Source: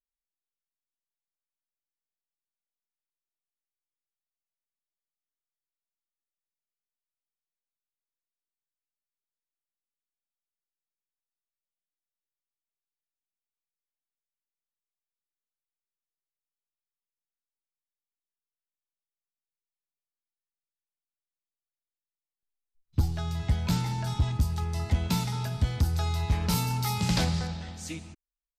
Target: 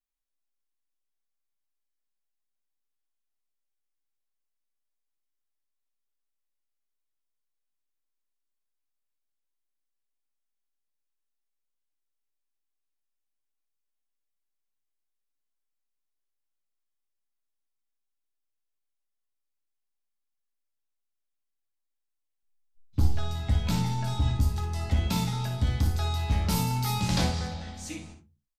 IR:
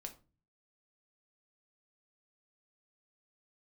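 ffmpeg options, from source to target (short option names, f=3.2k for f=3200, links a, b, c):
-filter_complex "[0:a]aecho=1:1:56|70:0.376|0.141[a];[1:a]atrim=start_sample=2205,asetrate=66150,aresample=44100[b];[a][b]afir=irnorm=-1:irlink=0,volume=7.5dB"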